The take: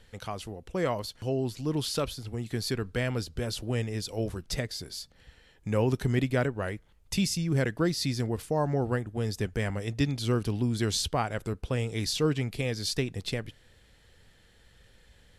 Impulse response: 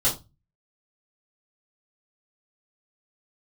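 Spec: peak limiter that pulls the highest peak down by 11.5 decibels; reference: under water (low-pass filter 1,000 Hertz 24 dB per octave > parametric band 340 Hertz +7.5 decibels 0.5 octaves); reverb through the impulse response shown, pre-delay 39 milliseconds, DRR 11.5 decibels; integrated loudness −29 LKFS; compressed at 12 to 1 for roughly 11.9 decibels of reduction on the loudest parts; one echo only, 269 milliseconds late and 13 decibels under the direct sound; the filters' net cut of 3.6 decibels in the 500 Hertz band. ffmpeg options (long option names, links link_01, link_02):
-filter_complex "[0:a]equalizer=frequency=500:width_type=o:gain=-9,acompressor=threshold=-35dB:ratio=12,alimiter=level_in=10.5dB:limit=-24dB:level=0:latency=1,volume=-10.5dB,aecho=1:1:269:0.224,asplit=2[link_01][link_02];[1:a]atrim=start_sample=2205,adelay=39[link_03];[link_02][link_03]afir=irnorm=-1:irlink=0,volume=-23dB[link_04];[link_01][link_04]amix=inputs=2:normalize=0,lowpass=frequency=1000:width=0.5412,lowpass=frequency=1000:width=1.3066,equalizer=frequency=340:width_type=o:width=0.5:gain=7.5,volume=14.5dB"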